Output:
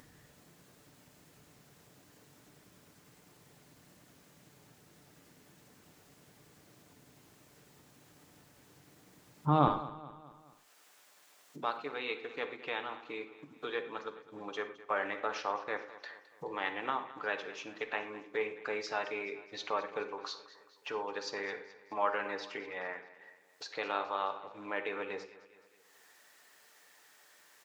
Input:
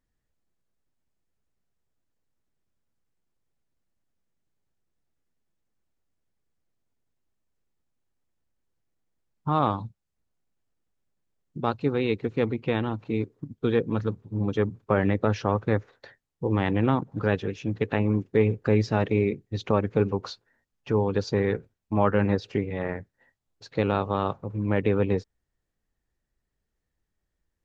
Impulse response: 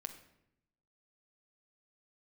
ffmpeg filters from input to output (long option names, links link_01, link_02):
-filter_complex "[0:a]asetnsamples=nb_out_samples=441:pad=0,asendcmd='9.68 highpass f 840',highpass=110,acompressor=mode=upward:threshold=-34dB:ratio=2.5,aecho=1:1:213|426|639|852:0.141|0.0706|0.0353|0.0177[link_01];[1:a]atrim=start_sample=2205,afade=type=out:start_time=0.18:duration=0.01,atrim=end_sample=8379[link_02];[link_01][link_02]afir=irnorm=-1:irlink=0"